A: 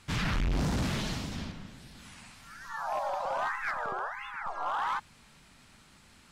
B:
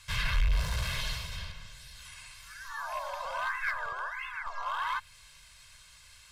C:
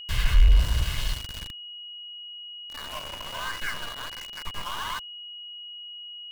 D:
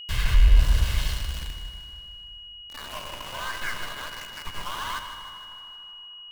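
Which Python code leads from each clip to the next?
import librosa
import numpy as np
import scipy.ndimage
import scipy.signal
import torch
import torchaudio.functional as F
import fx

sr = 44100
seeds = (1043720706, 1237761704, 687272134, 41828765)

y1 = fx.tone_stack(x, sr, knobs='10-0-10')
y1 = y1 + 0.74 * np.pad(y1, (int(1.9 * sr / 1000.0), 0))[:len(y1)]
y1 = fx.dynamic_eq(y1, sr, hz=6600.0, q=1.1, threshold_db=-58.0, ratio=4.0, max_db=-8)
y1 = y1 * 10.0 ** (5.5 / 20.0)
y2 = np.where(np.abs(y1) >= 10.0 ** (-33.0 / 20.0), y1, 0.0)
y2 = y2 + 10.0 ** (-38.0 / 20.0) * np.sin(2.0 * np.pi * 2900.0 * np.arange(len(y2)) / sr)
y2 = fx.low_shelf(y2, sr, hz=120.0, db=11.5)
y3 = fx.echo_feedback(y2, sr, ms=154, feedback_pct=57, wet_db=-10.5)
y3 = fx.rev_plate(y3, sr, seeds[0], rt60_s=3.2, hf_ratio=0.6, predelay_ms=0, drr_db=8.5)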